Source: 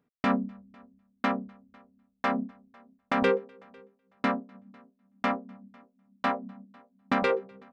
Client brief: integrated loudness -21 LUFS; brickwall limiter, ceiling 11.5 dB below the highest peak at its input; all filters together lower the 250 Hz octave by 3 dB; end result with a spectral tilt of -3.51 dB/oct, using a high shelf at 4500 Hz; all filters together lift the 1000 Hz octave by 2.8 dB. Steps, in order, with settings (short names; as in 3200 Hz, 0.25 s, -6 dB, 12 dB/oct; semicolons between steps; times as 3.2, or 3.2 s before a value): bell 250 Hz -3.5 dB; bell 1000 Hz +3.5 dB; high shelf 4500 Hz +5.5 dB; gain +13.5 dB; limiter -6.5 dBFS